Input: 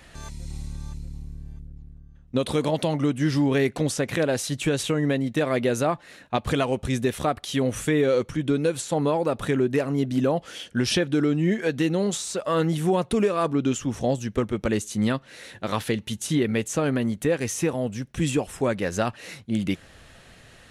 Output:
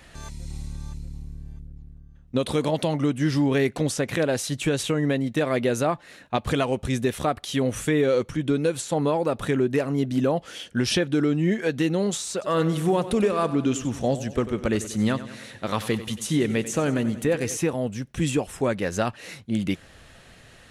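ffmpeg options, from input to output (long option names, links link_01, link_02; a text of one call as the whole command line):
ffmpeg -i in.wav -filter_complex "[0:a]asettb=1/sr,asplit=3[link_01][link_02][link_03];[link_01]atrim=end=12.324[link_04];[link_02]atrim=start=12.32:end=17.57,asetpts=PTS-STARTPTS,afade=type=in:duration=0.004:curve=qsin,afade=type=out:start_time=5.246:duration=0.004:curve=qsin,aecho=1:1:94|188|282|376|470|564:0.2|0.112|0.0626|0.035|0.0196|0.011,atrim=end_sample=231525[link_05];[link_03]atrim=start=17.566[link_06];[link_04][link_05]acrossfade=duration=0.004:curve1=hsin:curve2=qsin[link_07];[link_07][link_06]acrossfade=duration=0.004:curve1=qsin:curve2=hsin" out.wav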